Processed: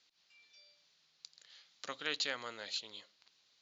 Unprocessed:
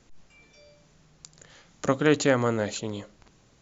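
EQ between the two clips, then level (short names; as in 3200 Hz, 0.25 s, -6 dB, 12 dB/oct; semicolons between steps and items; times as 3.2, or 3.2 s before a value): band-pass 4300 Hz, Q 2.7; air absorption 110 m; +5.0 dB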